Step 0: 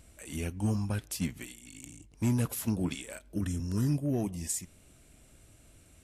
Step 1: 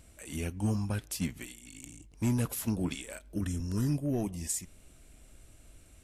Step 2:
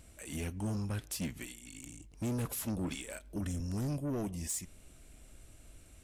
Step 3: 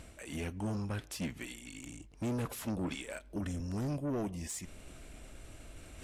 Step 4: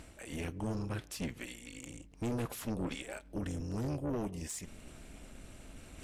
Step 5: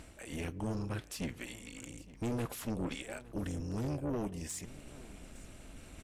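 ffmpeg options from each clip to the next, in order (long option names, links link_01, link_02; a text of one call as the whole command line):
ffmpeg -i in.wav -af "asubboost=boost=2.5:cutoff=60" out.wav
ffmpeg -i in.wav -af "asoftclip=type=tanh:threshold=-31dB" out.wav
ffmpeg -i in.wav -af "lowpass=frequency=3100:poles=1,lowshelf=frequency=260:gain=-6,areverse,acompressor=mode=upward:threshold=-44dB:ratio=2.5,areverse,volume=3.5dB" out.wav
ffmpeg -i in.wav -af "tremolo=f=230:d=0.71,volume=2.5dB" out.wav
ffmpeg -i in.wav -af "aecho=1:1:862:0.1" out.wav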